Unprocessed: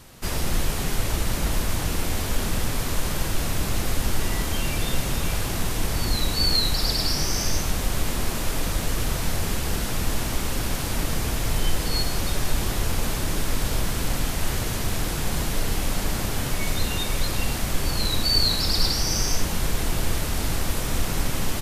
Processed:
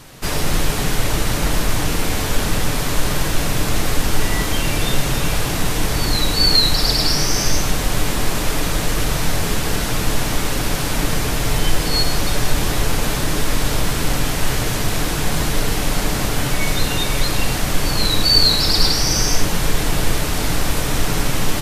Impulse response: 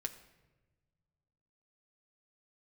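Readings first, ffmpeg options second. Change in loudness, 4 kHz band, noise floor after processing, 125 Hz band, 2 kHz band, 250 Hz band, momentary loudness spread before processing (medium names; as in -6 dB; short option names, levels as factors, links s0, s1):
+6.5 dB, +7.5 dB, -21 dBFS, +5.5 dB, +8.0 dB, +6.5 dB, 6 LU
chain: -filter_complex "[0:a]asplit=2[s0][s1];[1:a]atrim=start_sample=2205,lowshelf=f=130:g=-7,highshelf=f=10000:g=-8[s2];[s1][s2]afir=irnorm=-1:irlink=0,volume=1.78[s3];[s0][s3]amix=inputs=2:normalize=0"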